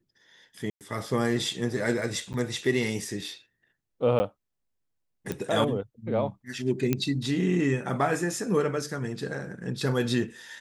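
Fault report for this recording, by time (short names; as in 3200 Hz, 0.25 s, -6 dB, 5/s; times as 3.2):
0.7–0.81 gap 0.108 s
2.33–2.34 gap 9.3 ms
4.19–4.2 gap 10 ms
5.32 pop -17 dBFS
6.93 pop -11 dBFS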